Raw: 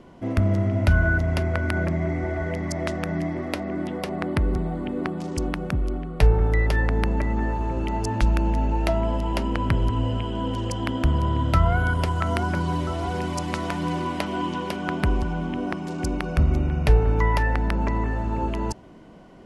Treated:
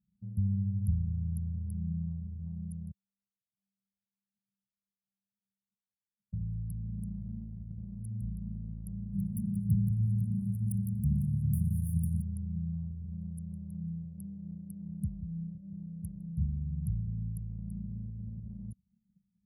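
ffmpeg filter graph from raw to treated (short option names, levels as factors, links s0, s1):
-filter_complex "[0:a]asettb=1/sr,asplit=3[s0][s1][s2];[s0]atrim=end=2.914[s3];[s1]atrim=start=2.91:end=6.33,asetpts=PTS-STARTPTS,afade=t=in:d=0.004:c=qsin,afade=t=out:st=3.416:d=0.004:c=qsin,asuperpass=centerf=660:order=12:qfactor=0.64,aphaser=in_gain=1:out_gain=1:delay=2.6:decay=0.28:speed=1.2:type=sinusoidal[s4];[s2]atrim=start=6.326[s5];[s3][s4]acrossfade=d=0.004:c1=hsin:c2=qsin[s6];[s6][s5]acrossfade=d=0.004:c1=qsin:c2=hsin,asettb=1/sr,asplit=3[s7][s8][s9];[s7]atrim=end=9.134[s10];[s8]atrim=start=9.13:end=12.22,asetpts=PTS-STARTPTS,afade=t=in:d=0.004:c=qsin,afade=t=out:st=3.086:d=0.004:c=qsin,asplit=2[s11][s12];[s12]highpass=f=720:p=1,volume=70.8,asoftclip=type=tanh:threshold=0.531[s13];[s11][s13]amix=inputs=2:normalize=0,lowpass=f=3500:p=1,volume=0.501,aecho=1:1:171:0.251,atrim=end_sample=136269[s14];[s9]atrim=start=12.216[s15];[s10][s14]acrossfade=d=0.004:c1=hsin:c2=qsin[s16];[s16][s15]acrossfade=d=0.004:c1=qsin:c2=hsin,highpass=f=81:w=0.5412,highpass=f=81:w=1.3066,afftfilt=real='re*(1-between(b*sr/4096,220,9200))':imag='im*(1-between(b*sr/4096,220,9200))':win_size=4096:overlap=0.75,anlmdn=2.51,volume=0.422"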